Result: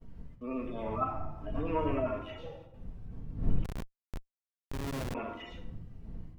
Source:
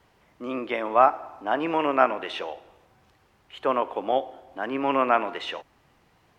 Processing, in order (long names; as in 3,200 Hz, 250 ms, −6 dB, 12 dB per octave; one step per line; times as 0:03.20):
harmonic-percussive split with one part muted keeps harmonic
wind on the microphone 110 Hz −35 dBFS
noise gate −48 dBFS, range −23 dB
on a send at −2.5 dB: convolution reverb RT60 0.80 s, pre-delay 4 ms
0:03.64–0:05.15: on the sum: comparator with hysteresis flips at −21.5 dBFS
level −8 dB